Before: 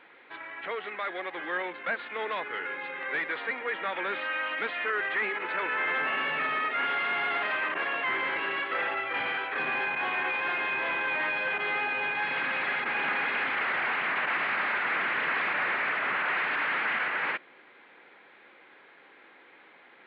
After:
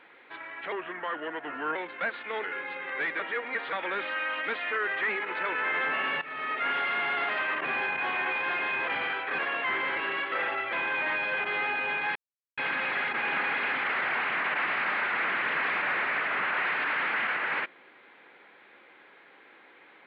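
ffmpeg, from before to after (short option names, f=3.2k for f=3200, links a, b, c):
-filter_complex "[0:a]asplit=12[a][b][c][d][e][f][g][h][i][j][k][l];[a]atrim=end=0.724[m];[b]atrim=start=0.72:end=1.61,asetpts=PTS-STARTPTS,asetrate=37926,aresample=44100,atrim=end_sample=45638,asetpts=PTS-STARTPTS[n];[c]atrim=start=1.606:end=2.292[o];[d]atrim=start=2.568:end=3.332[p];[e]atrim=start=3.328:end=3.862,asetpts=PTS-STARTPTS,areverse[q];[f]atrim=start=3.858:end=6.35,asetpts=PTS-STARTPTS,afade=t=out:st=2.488:d=0.004:c=hsin:silence=0.141254[r];[g]atrim=start=6.35:end=7.782,asetpts=PTS-STARTPTS,afade=t=in:d=0.4:silence=0.141254[s];[h]atrim=start=9.628:end=10.862[t];[i]atrim=start=9.118:end=9.632[u];[j]atrim=start=7.778:end=9.122[v];[k]atrim=start=10.858:end=12.29,asetpts=PTS-STARTPTS,afade=t=out:st=1.428:d=0.004:c=hsin,apad=pad_dur=0.42[w];[l]atrim=start=12.29,asetpts=PTS-STARTPTS,afade=t=in:d=0.004:c=hsin[x];[m][n]acrossfade=d=0.004:c1=hsin:c2=hsin[y];[y][o]acrossfade=d=0.004:c1=hsin:c2=hsin[z];[z][p]acrossfade=d=0.004:c1=hsin:c2=hsin[aa];[aa][q]acrossfade=d=0.004:c1=hsin:c2=hsin[ab];[r][s]concat=n=2:v=0:a=1[ac];[ab][ac]acrossfade=d=0.004:c1=hsin:c2=hsin[ad];[ad][t]acrossfade=d=0.004:c1=hsin:c2=hsin[ae];[ae][u]acrossfade=d=0.004:c1=hsin:c2=hsin[af];[af][v]acrossfade=d=0.004:c1=hsin:c2=hsin[ag];[w][x]concat=n=2:v=0:a=1[ah];[ag][ah]acrossfade=d=0.004:c1=hsin:c2=hsin"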